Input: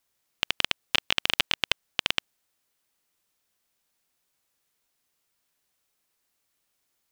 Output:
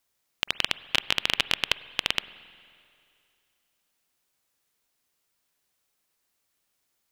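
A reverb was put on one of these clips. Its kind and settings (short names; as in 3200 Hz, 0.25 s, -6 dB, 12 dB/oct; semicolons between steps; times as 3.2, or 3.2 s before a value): spring tank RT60 2.4 s, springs 44/49 ms, chirp 60 ms, DRR 16.5 dB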